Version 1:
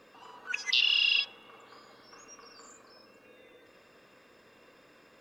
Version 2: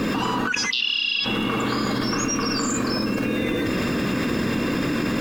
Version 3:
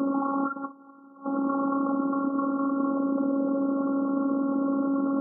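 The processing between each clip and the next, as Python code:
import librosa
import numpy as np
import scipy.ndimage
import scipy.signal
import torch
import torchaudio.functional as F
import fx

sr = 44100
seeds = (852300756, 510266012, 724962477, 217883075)

y1 = fx.low_shelf_res(x, sr, hz=370.0, db=11.0, q=1.5)
y1 = fx.env_flatten(y1, sr, amount_pct=100)
y2 = fx.robotise(y1, sr, hz=275.0)
y2 = fx.brickwall_bandpass(y2, sr, low_hz=150.0, high_hz=1400.0)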